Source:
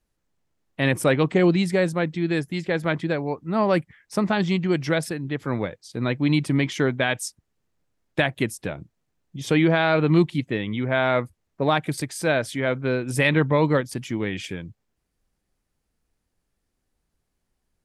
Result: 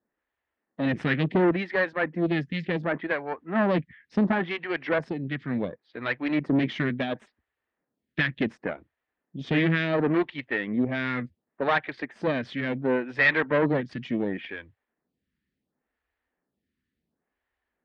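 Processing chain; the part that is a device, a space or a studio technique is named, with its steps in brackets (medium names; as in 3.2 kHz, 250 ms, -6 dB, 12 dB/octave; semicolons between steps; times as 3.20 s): vibe pedal into a guitar amplifier (lamp-driven phase shifter 0.7 Hz; valve stage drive 22 dB, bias 0.75; cabinet simulation 78–3600 Hz, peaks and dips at 110 Hz -8 dB, 240 Hz +5 dB, 1.8 kHz +8 dB); trim +4.5 dB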